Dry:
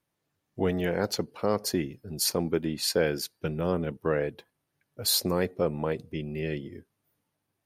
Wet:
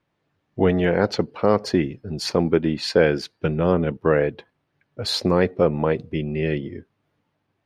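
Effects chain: LPF 3300 Hz 12 dB/oct; gain +8.5 dB

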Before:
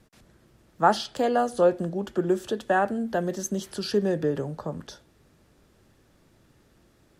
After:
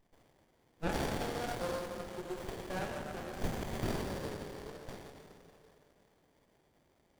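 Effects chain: differentiator; plate-style reverb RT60 3.2 s, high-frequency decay 0.8×, DRR -4.5 dB; dynamic EQ 4700 Hz, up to +5 dB, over -56 dBFS, Q 3.2; running maximum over 33 samples; gain +2.5 dB

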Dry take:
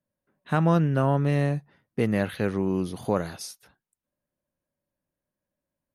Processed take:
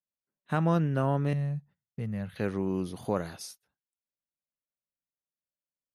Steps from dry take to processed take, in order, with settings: gate -46 dBFS, range -17 dB; 1.33–2.36 EQ curve 180 Hz 0 dB, 310 Hz -18 dB, 490 Hz -12 dB; gain -4.5 dB

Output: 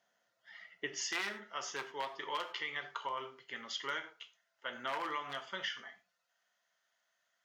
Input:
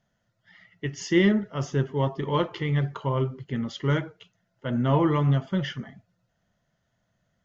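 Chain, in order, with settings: one-sided fold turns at -15 dBFS; HPF 520 Hz 12 dB/oct, from 1.01 s 1100 Hz; non-linear reverb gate 0.13 s falling, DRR 8.5 dB; compressor 4:1, threshold -35 dBFS, peak gain reduction 8.5 dB

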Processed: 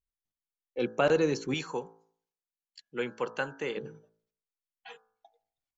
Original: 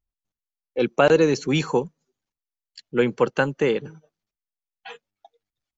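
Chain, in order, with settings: de-hum 55.47 Hz, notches 31; 1.54–3.77 low shelf 430 Hz -10 dB; gain -8 dB

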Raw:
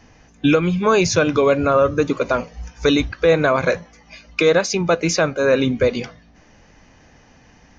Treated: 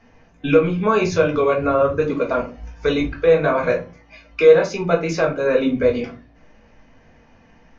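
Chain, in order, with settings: tone controls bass -3 dB, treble -12 dB; shoebox room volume 140 m³, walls furnished, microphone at 1.6 m; gain -5 dB

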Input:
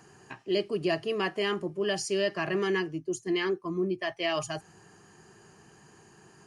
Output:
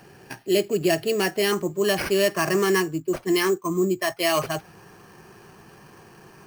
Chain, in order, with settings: bell 1100 Hz -12.5 dB 0.26 oct, from 1.52 s +4.5 dB; sample-rate reducer 7300 Hz, jitter 0%; gain +7 dB

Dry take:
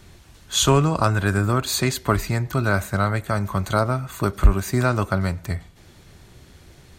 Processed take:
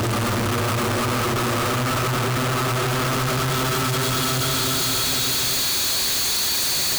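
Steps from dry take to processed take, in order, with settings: median filter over 5 samples; high shelf 6700 Hz +10.5 dB; Paulstretch 27×, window 0.25 s, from 1.48; Schmitt trigger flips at -44 dBFS

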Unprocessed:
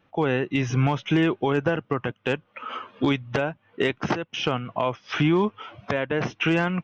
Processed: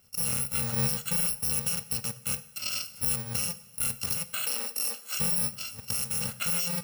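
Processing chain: FFT order left unsorted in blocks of 128 samples; in parallel at -1 dB: negative-ratio compressor -33 dBFS, ratio -1; 4.45–5.18 on the sum: steep high-pass 250 Hz 48 dB/oct; two-slope reverb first 0.65 s, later 2.7 s, from -18 dB, DRR 12 dB; gain -8 dB

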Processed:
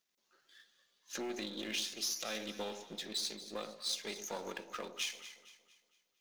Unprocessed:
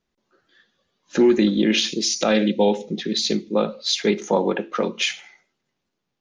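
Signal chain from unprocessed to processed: half-wave gain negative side -7 dB; tilt +4 dB/oct; compressor 2:1, threshold -40 dBFS, peak gain reduction 15.5 dB; echo with dull and thin repeats by turns 0.115 s, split 900 Hz, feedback 64%, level -10 dB; gain -6.5 dB

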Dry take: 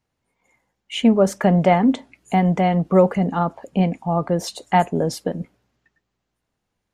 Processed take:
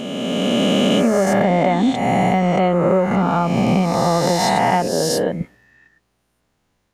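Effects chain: spectral swells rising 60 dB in 2.55 s; 4.87–5.41 low shelf 400 Hz -9 dB; compressor, threshold -19 dBFS, peak gain reduction 11.5 dB; gain +6 dB

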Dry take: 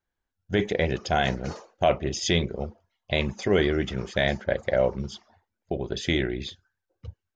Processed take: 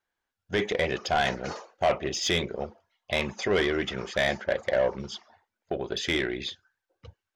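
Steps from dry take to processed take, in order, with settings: overdrive pedal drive 16 dB, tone 4500 Hz, clips at -8.5 dBFS; gain -5.5 dB

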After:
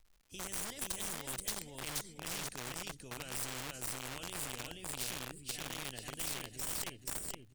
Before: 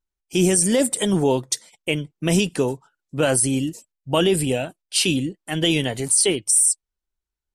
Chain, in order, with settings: tracing distortion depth 0.037 ms; Doppler pass-by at 1.77, 12 m/s, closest 5.5 m; reverse; compressor 20:1, threshold -35 dBFS, peak gain reduction 19.5 dB; reverse; passive tone stack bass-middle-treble 10-0-1; feedback echo 0.48 s, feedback 27%, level -3 dB; crackle 170/s -79 dBFS; low shelf 130 Hz +11.5 dB; in parallel at -8.5 dB: requantised 8-bit, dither none; on the sum: spectral compressor 4:1; gain +10 dB

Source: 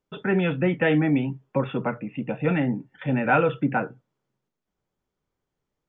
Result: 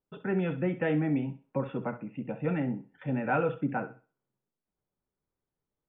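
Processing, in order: LPF 1500 Hz 6 dB/oct; thinning echo 65 ms, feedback 30%, high-pass 210 Hz, level -13.5 dB; gain -6.5 dB

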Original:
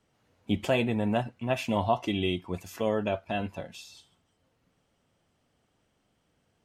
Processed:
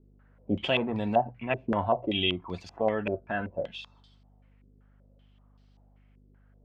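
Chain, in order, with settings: hum 50 Hz, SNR 25 dB; notches 60/120 Hz; stepped low-pass 5.2 Hz 390–4500 Hz; gain -2.5 dB

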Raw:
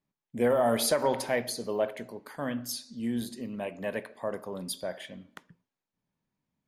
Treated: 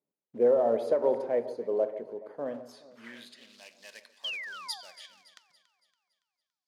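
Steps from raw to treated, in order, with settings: short-mantissa float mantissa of 2-bit; painted sound fall, 4.24–4.81, 690–3300 Hz -29 dBFS; band-pass sweep 460 Hz -> 4900 Hz, 2.41–3.62; echo with dull and thin repeats by turns 0.141 s, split 1100 Hz, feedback 67%, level -13 dB; gain +4.5 dB

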